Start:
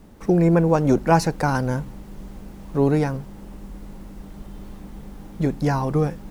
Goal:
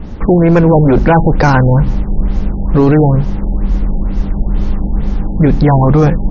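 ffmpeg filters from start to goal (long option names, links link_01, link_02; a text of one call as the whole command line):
ffmpeg -i in.wav -af "lowshelf=frequency=120:gain=11,apsyclip=19.5dB,afftfilt=real='re*lt(b*sr/1024,880*pow(7100/880,0.5+0.5*sin(2*PI*2.2*pts/sr)))':imag='im*lt(b*sr/1024,880*pow(7100/880,0.5+0.5*sin(2*PI*2.2*pts/sr)))':win_size=1024:overlap=0.75,volume=-3.5dB" out.wav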